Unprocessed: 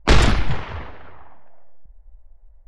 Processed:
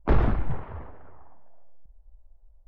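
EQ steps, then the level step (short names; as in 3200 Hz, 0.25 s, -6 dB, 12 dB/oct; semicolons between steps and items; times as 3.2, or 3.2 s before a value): LPF 1100 Hz 12 dB/oct; -6.5 dB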